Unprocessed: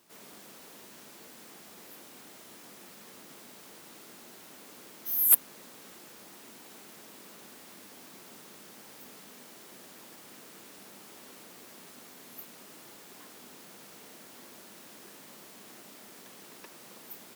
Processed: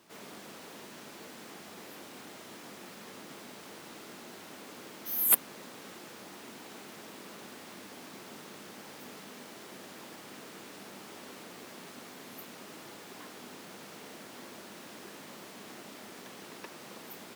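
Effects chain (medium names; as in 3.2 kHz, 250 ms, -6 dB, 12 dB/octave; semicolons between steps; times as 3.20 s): treble shelf 6.9 kHz -10.5 dB; trim +5.5 dB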